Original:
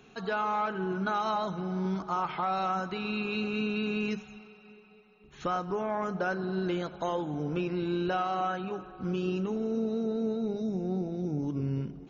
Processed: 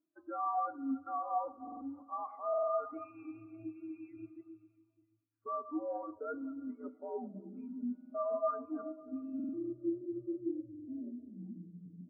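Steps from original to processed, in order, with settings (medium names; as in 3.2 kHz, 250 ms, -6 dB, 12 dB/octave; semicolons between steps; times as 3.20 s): chunks repeated in reverse 152 ms, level -10.5 dB; reverse; compression 20:1, threshold -40 dBFS, peak gain reduction 15.5 dB; reverse; mistuned SSB -100 Hz 300–2400 Hz; on a send at -6.5 dB: reverberation RT60 5.5 s, pre-delay 5 ms; on the sum: overload inside the chain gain 36 dB; hum notches 50/100/150/200/250/300/350 Hz; buffer glitch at 1.63/2.49/7.96/9.35/10.70 s, samples 2048, times 3; spectral contrast expander 2.5:1; trim +10.5 dB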